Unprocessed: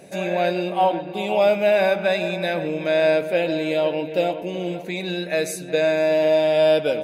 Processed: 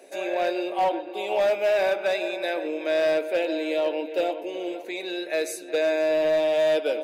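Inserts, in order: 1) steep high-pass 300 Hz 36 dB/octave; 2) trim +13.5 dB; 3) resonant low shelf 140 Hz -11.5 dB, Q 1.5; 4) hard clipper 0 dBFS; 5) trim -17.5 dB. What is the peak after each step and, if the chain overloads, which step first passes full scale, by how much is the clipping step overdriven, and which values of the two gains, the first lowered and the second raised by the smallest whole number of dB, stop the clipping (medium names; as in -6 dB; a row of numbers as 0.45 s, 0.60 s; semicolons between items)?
-8.0 dBFS, +5.5 dBFS, +6.0 dBFS, 0.0 dBFS, -17.5 dBFS; step 2, 6.0 dB; step 2 +7.5 dB, step 5 -11.5 dB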